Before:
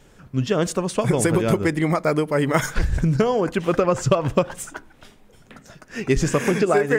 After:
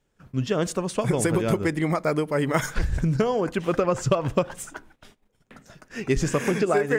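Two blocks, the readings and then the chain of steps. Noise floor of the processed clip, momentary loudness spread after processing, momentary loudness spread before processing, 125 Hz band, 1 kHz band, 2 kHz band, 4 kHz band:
−71 dBFS, 9 LU, 9 LU, −3.5 dB, −3.5 dB, −3.5 dB, −3.5 dB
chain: noise gate −47 dBFS, range −17 dB
level −3.5 dB

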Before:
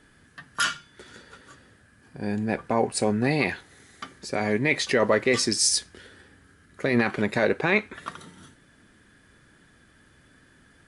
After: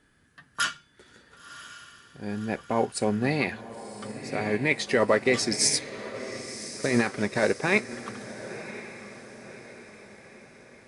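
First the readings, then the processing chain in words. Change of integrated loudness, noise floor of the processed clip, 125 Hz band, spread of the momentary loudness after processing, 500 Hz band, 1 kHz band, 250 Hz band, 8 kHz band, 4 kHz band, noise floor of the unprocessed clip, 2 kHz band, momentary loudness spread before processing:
−3.0 dB, −62 dBFS, −2.0 dB, 22 LU, −1.0 dB, −2.0 dB, −2.0 dB, −1.5 dB, −2.0 dB, −58 dBFS, −1.5 dB, 18 LU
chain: feedback delay with all-pass diffusion 1,044 ms, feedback 49%, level −8.5 dB
expander for the loud parts 1.5 to 1, over −32 dBFS

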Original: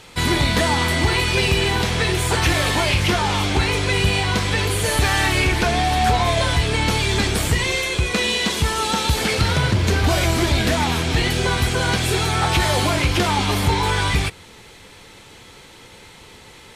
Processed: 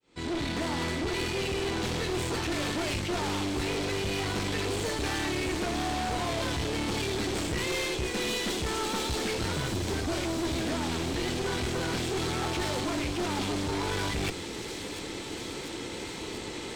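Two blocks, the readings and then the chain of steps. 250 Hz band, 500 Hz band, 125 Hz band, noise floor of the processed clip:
−7.0 dB, −8.0 dB, −14.5 dB, −38 dBFS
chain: fade in at the beginning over 2.03 s
parametric band 320 Hz +13 dB 1 octave
reversed playback
downward compressor 16 to 1, threshold −24 dBFS, peak gain reduction 19 dB
reversed playback
elliptic low-pass filter 8,400 Hz
asymmetric clip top −36.5 dBFS
harmonic generator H 6 −20 dB, 8 −18 dB, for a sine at −19 dBFS
soft clipping −28 dBFS, distortion −14 dB
on a send: delay with a high-pass on its return 694 ms, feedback 78%, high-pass 4,800 Hz, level −5 dB
on the sum: level +3.5 dB

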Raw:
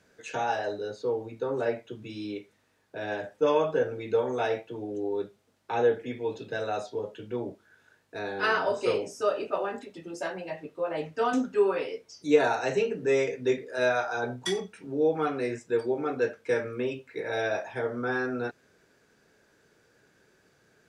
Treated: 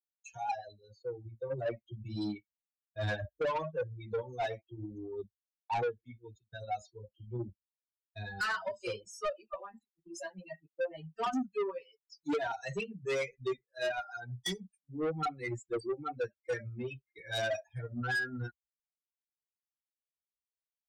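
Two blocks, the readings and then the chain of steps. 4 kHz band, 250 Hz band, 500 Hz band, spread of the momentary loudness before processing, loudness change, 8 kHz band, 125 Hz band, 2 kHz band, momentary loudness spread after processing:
−4.0 dB, −8.0 dB, −10.5 dB, 11 LU, −8.0 dB, −4.5 dB, 0.0 dB, −5.5 dB, 13 LU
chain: spectral dynamics exaggerated over time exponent 3
camcorder AGC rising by 8.2 dB per second
downward expander −52 dBFS
low-pass filter 9,000 Hz
soft clipping −28.5 dBFS, distortion −8 dB

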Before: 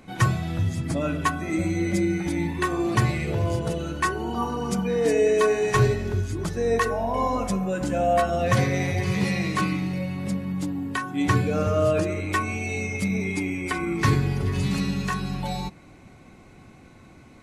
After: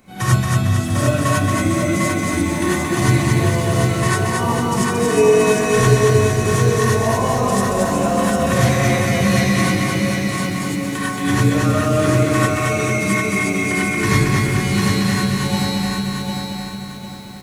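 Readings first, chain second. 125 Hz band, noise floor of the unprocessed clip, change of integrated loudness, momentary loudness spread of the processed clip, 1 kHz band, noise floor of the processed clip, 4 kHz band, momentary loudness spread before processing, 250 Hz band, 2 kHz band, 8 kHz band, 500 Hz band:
+8.5 dB, −49 dBFS, +7.5 dB, 7 LU, +6.5 dB, −29 dBFS, +11.0 dB, 7 LU, +8.0 dB, +9.0 dB, +13.5 dB, +6.5 dB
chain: high-shelf EQ 7,300 Hz +10.5 dB
repeating echo 226 ms, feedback 53%, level −3 dB
reverb whose tail is shaped and stops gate 120 ms rising, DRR −7.5 dB
feedback echo at a low word length 750 ms, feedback 35%, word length 7 bits, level −4 dB
level −4 dB

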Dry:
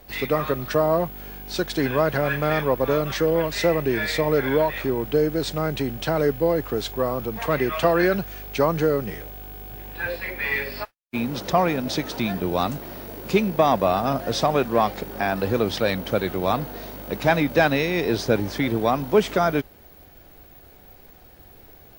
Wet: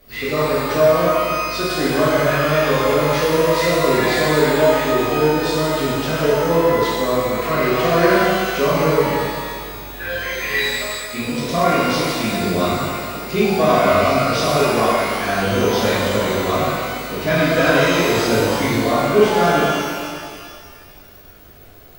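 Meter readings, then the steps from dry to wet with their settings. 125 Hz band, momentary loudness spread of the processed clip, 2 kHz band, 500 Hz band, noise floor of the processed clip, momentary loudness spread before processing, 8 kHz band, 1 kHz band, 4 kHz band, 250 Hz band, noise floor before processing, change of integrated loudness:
+4.5 dB, 9 LU, +7.0 dB, +5.5 dB, −42 dBFS, 11 LU, +10.5 dB, +6.5 dB, +8.0 dB, +5.0 dB, −49 dBFS, +5.5 dB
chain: Butterworth band-reject 850 Hz, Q 3.3
reverb with rising layers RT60 1.9 s, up +12 semitones, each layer −8 dB, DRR −9.5 dB
level −4.5 dB

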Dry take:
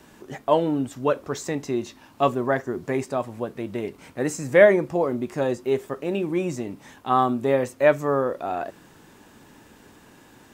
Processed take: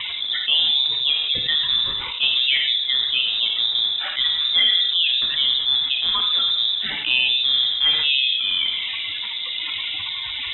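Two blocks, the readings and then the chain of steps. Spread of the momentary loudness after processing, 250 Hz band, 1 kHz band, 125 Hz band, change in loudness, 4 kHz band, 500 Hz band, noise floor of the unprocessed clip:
9 LU, below −20 dB, −11.5 dB, below −10 dB, +6.0 dB, +30.5 dB, below −25 dB, −52 dBFS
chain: spectral magnitudes quantised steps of 30 dB
rotating-speaker cabinet horn 1.1 Hz
reverb whose tail is shaped and stops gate 220 ms falling, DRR 4.5 dB
voice inversion scrambler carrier 3,800 Hz
envelope flattener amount 70%
level −2.5 dB

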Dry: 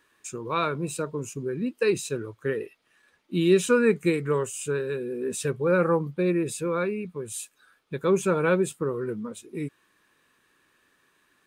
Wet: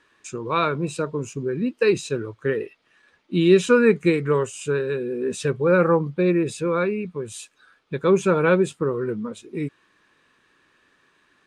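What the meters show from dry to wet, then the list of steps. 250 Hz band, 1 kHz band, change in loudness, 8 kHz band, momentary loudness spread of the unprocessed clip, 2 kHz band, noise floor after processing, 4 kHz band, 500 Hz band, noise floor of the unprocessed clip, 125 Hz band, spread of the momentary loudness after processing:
+4.5 dB, +4.5 dB, +4.5 dB, −2.0 dB, 14 LU, +4.5 dB, −64 dBFS, +4.0 dB, +4.5 dB, −68 dBFS, +4.5 dB, 14 LU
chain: low-pass filter 5,900 Hz 12 dB per octave
level +4.5 dB

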